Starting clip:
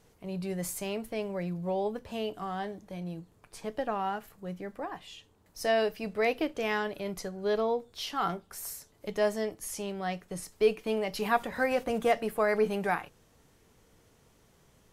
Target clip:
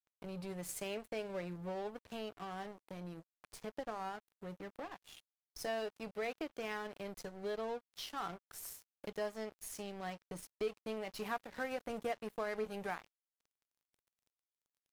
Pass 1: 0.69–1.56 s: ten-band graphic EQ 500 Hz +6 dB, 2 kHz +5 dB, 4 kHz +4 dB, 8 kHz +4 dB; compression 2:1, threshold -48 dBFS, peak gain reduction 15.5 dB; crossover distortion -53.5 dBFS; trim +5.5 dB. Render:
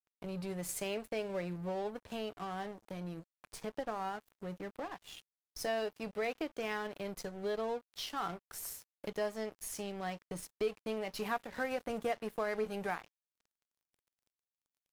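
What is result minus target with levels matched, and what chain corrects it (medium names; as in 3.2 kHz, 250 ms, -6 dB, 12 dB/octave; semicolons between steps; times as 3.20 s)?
compression: peak gain reduction -3 dB
0.69–1.56 s: ten-band graphic EQ 500 Hz +6 dB, 2 kHz +5 dB, 4 kHz +4 dB, 8 kHz +4 dB; compression 2:1, threshold -54 dBFS, peak gain reduction 18.5 dB; crossover distortion -53.5 dBFS; trim +5.5 dB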